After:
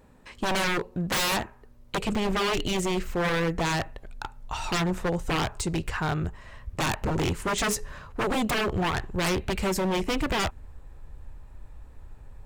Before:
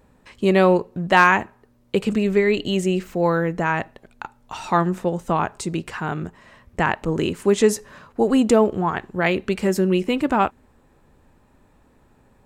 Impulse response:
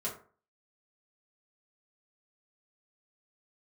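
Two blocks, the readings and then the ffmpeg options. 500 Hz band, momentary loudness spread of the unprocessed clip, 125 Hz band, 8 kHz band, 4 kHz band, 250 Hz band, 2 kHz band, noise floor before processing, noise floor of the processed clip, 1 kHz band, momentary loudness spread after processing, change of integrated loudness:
-10.0 dB, 15 LU, -4.0 dB, +1.5 dB, +2.0 dB, -8.0 dB, -6.0 dB, -58 dBFS, -52 dBFS, -7.5 dB, 10 LU, -7.0 dB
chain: -af "asubboost=boost=10:cutoff=69,aeval=exprs='0.0944*(abs(mod(val(0)/0.0944+3,4)-2)-1)':c=same"

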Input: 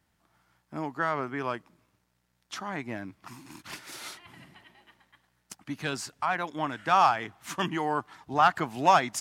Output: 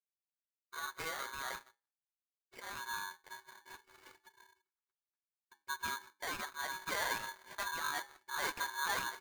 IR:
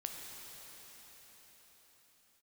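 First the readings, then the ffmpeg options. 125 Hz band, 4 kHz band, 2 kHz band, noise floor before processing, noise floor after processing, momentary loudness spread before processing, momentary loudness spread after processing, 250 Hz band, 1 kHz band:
-21.0 dB, -4.5 dB, -5.0 dB, -74 dBFS, under -85 dBFS, 20 LU, 18 LU, -21.0 dB, -15.0 dB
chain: -filter_complex "[0:a]asplit=2[a][b];[b]adelay=181,lowpass=f=2.6k:p=1,volume=-19dB,asplit=2[c][d];[d]adelay=181,lowpass=f=2.6k:p=1,volume=0.39,asplit=2[e][f];[f]adelay=181,lowpass=f=2.6k:p=1,volume=0.39[g];[c][e][g]amix=inputs=3:normalize=0[h];[a][h]amix=inputs=2:normalize=0,asubboost=boost=7.5:cutoff=100,aresample=11025,asoftclip=type=hard:threshold=-25dB,aresample=44100,flanger=delay=2.6:depth=8.6:regen=-22:speed=0.48:shape=triangular,lowshelf=f=190:g=3.5,aeval=exprs='val(0)+0.00398*sin(2*PI*1400*n/s)':c=same,acrusher=bits=6:mix=0:aa=0.5,afftdn=nr=21:nf=-50,adynamicsmooth=sensitivity=2.5:basefreq=840,flanger=delay=9.1:depth=1.4:regen=-78:speed=1.9:shape=triangular,afreqshift=-480,aeval=exprs='val(0)*sgn(sin(2*PI*1300*n/s))':c=same"

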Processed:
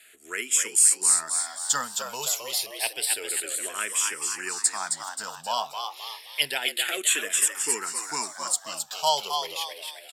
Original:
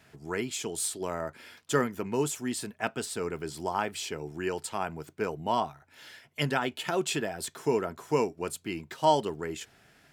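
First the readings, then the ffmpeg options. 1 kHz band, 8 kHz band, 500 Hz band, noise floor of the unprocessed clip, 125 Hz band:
+0.5 dB, +16.0 dB, -7.0 dB, -62 dBFS, under -15 dB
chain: -filter_complex "[0:a]lowpass=11k,aderivative,bandreject=f=6.1k:w=11,asplit=2[a][b];[b]asplit=7[c][d][e][f][g][h][i];[c]adelay=265,afreqshift=98,volume=-5dB[j];[d]adelay=530,afreqshift=196,volume=-10.5dB[k];[e]adelay=795,afreqshift=294,volume=-16dB[l];[f]adelay=1060,afreqshift=392,volume=-21.5dB[m];[g]adelay=1325,afreqshift=490,volume=-27.1dB[n];[h]adelay=1590,afreqshift=588,volume=-32.6dB[o];[i]adelay=1855,afreqshift=686,volume=-38.1dB[p];[j][k][l][m][n][o][p]amix=inputs=7:normalize=0[q];[a][q]amix=inputs=2:normalize=0,alimiter=level_in=23.5dB:limit=-1dB:release=50:level=0:latency=1,asplit=2[r][s];[s]afreqshift=-0.29[t];[r][t]amix=inputs=2:normalize=1,volume=-5.5dB"

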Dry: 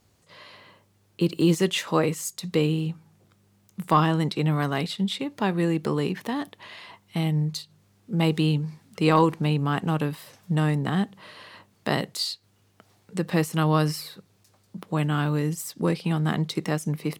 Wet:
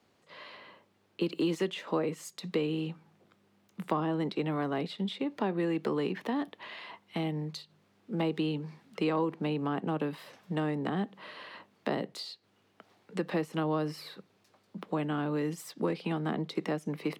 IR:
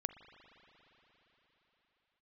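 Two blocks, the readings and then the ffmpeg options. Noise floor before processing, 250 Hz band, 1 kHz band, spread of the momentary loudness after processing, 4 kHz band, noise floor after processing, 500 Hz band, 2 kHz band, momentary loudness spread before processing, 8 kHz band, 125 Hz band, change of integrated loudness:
-64 dBFS, -7.0 dB, -9.0 dB, 16 LU, -10.0 dB, -69 dBFS, -5.0 dB, -8.0 dB, 16 LU, under -10 dB, -13.0 dB, -8.0 dB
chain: -filter_complex "[0:a]acrossover=split=180 4200:gain=0.126 1 0.224[a][b][c];[a][b][c]amix=inputs=3:normalize=0,acrossover=split=200|720[d][e][f];[d]acompressor=threshold=-42dB:ratio=4[g];[e]acompressor=threshold=-29dB:ratio=4[h];[f]acompressor=threshold=-40dB:ratio=4[i];[g][h][i]amix=inputs=3:normalize=0"

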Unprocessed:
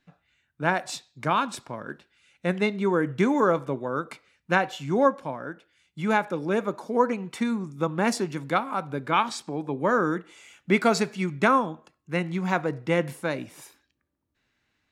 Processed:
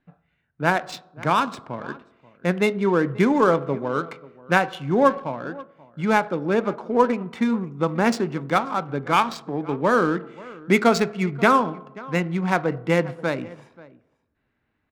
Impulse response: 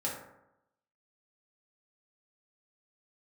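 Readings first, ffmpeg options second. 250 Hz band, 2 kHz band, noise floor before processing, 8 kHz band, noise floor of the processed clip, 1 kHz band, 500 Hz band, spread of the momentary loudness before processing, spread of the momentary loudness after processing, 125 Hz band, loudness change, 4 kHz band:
+4.0 dB, +3.5 dB, -77 dBFS, -0.5 dB, -73 dBFS, +4.0 dB, +4.0 dB, 13 LU, 15 LU, +4.0 dB, +3.5 dB, +2.5 dB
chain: -filter_complex "[0:a]aecho=1:1:534:0.0944,asplit=2[a][b];[1:a]atrim=start_sample=2205,asetrate=36603,aresample=44100[c];[b][c]afir=irnorm=-1:irlink=0,volume=-20.5dB[d];[a][d]amix=inputs=2:normalize=0,adynamicsmooth=sensitivity=5.5:basefreq=1.8k,volume=3dB"

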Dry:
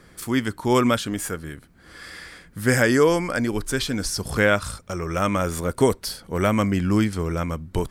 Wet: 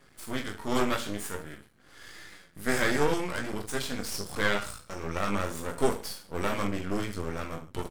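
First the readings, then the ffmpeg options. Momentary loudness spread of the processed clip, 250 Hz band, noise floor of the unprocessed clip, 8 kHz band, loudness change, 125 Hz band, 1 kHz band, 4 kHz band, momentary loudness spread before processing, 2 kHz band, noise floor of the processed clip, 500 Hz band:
17 LU, -10.5 dB, -52 dBFS, -7.5 dB, -9.0 dB, -12.0 dB, -6.5 dB, -6.0 dB, 14 LU, -6.5 dB, -58 dBFS, -9.0 dB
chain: -filter_complex "[0:a]asplit=2[a][b];[b]aecho=0:1:20|44|72.8|107.4|148.8:0.631|0.398|0.251|0.158|0.1[c];[a][c]amix=inputs=2:normalize=0,flanger=delay=7.1:depth=7:regen=55:speed=0.52:shape=triangular,lowshelf=f=160:g=-5.5,aeval=exprs='max(val(0),0)':c=same,volume=-1.5dB"

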